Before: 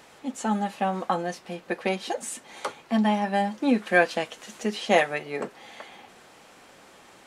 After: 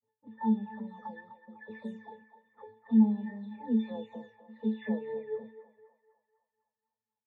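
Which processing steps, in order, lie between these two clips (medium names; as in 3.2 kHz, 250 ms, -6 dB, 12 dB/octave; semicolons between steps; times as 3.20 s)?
delay that grows with frequency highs early, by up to 435 ms; touch-sensitive flanger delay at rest 10.3 ms, full sweep at -22.5 dBFS; gate -44 dBFS, range -35 dB; level-controlled noise filter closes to 1 kHz, open at -24.5 dBFS; pitch-class resonator A, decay 0.29 s; band-passed feedback delay 251 ms, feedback 59%, band-pass 1.1 kHz, level -10.5 dB; wow and flutter 17 cents; trim +6 dB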